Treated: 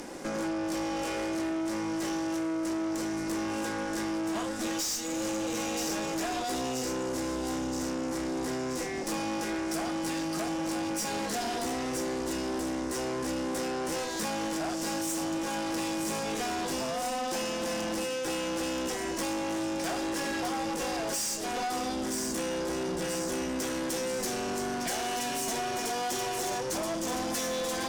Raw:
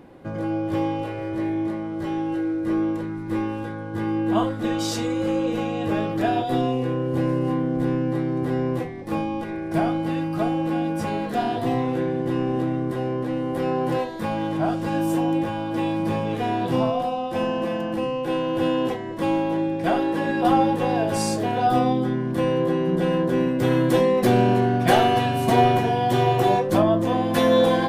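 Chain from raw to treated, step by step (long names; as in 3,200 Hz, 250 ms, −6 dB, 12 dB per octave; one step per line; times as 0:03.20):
high shelf with overshoot 4,700 Hz +7 dB, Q 3
in parallel at +2 dB: speech leveller 0.5 s
on the sum: octave-band graphic EQ 2,000/4,000/8,000 Hz +4/+10/+9 dB
downward compressor 10 to 1, threshold −18 dBFS, peak gain reduction 16 dB
high-pass filter 200 Hz 24 dB per octave
on a send: delay with a high-pass on its return 977 ms, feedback 62%, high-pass 3,900 Hz, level −5.5 dB
on the sum: tube saturation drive 26 dB, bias 0.75
level −3 dB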